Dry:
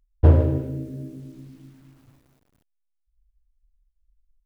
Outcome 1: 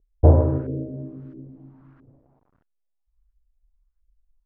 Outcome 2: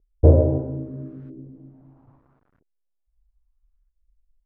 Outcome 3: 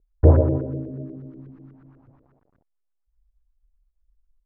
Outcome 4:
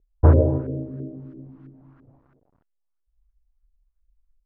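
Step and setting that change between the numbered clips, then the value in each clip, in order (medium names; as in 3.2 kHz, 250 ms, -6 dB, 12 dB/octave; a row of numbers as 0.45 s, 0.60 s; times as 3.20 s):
LFO low-pass, rate: 1.5 Hz, 0.77 Hz, 8.2 Hz, 3 Hz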